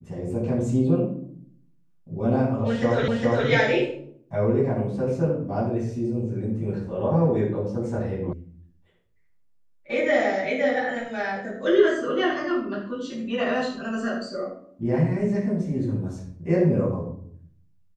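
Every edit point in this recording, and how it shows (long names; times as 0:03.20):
0:03.08: the same again, the last 0.41 s
0:08.33: cut off before it has died away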